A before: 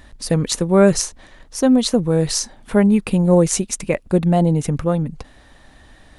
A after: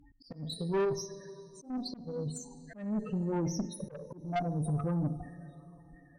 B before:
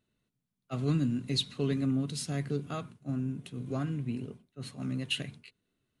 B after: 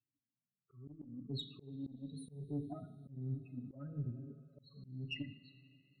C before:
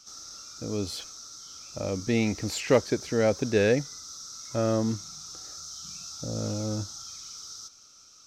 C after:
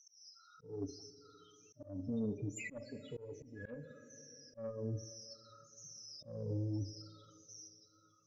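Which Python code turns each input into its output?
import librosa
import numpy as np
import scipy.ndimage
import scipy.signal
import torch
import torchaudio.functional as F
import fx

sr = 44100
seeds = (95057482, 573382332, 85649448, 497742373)

y = fx.spec_ripple(x, sr, per_octave=0.7, drift_hz=-1.2, depth_db=15)
y = fx.highpass(y, sr, hz=85.0, slope=6)
y = fx.peak_eq(y, sr, hz=7700.0, db=-5.5, octaves=1.7)
y = y + 0.43 * np.pad(y, (int(7.1 * sr / 1000.0), 0))[:len(y)]
y = fx.dynamic_eq(y, sr, hz=550.0, q=0.88, threshold_db=-29.0, ratio=4.0, max_db=-3)
y = fx.level_steps(y, sr, step_db=11)
y = fx.spec_topn(y, sr, count=8)
y = fx.rider(y, sr, range_db=4, speed_s=0.5)
y = fx.rev_double_slope(y, sr, seeds[0], early_s=0.57, late_s=3.8, knee_db=-15, drr_db=8.0)
y = fx.tube_stage(y, sr, drive_db=20.0, bias=0.3)
y = fx.auto_swell(y, sr, attack_ms=274.0)
y = F.gain(torch.from_numpy(y), -6.0).numpy()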